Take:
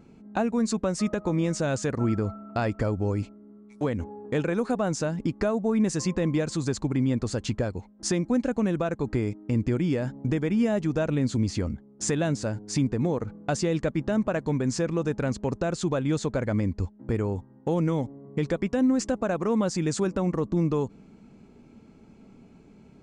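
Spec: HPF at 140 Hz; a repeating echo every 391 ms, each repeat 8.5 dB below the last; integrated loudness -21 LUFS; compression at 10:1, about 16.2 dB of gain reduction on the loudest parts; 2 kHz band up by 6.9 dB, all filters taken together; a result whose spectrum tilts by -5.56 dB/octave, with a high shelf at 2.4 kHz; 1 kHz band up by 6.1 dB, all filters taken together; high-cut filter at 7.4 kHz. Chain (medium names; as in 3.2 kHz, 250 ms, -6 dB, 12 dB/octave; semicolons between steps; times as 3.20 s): high-pass 140 Hz; low-pass 7.4 kHz; peaking EQ 1 kHz +7 dB; peaking EQ 2 kHz +8.5 dB; treble shelf 2.4 kHz -4.5 dB; compression 10:1, threshold -36 dBFS; feedback delay 391 ms, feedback 38%, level -8.5 dB; trim +19 dB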